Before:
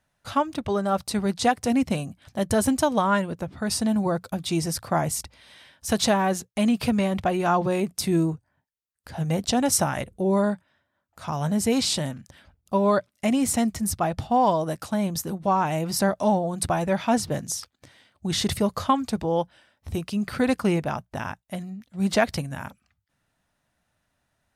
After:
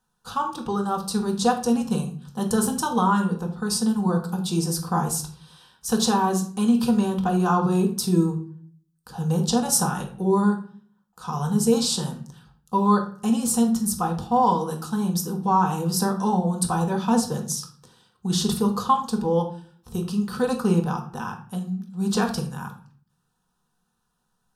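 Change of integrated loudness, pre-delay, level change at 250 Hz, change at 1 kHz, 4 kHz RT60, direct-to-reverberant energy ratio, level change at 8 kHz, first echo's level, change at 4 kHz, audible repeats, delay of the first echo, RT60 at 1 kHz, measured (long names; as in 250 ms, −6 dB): +1.0 dB, 4 ms, +2.0 dB, +1.5 dB, 0.35 s, 2.5 dB, +2.0 dB, no echo audible, 0.0 dB, no echo audible, no echo audible, 0.45 s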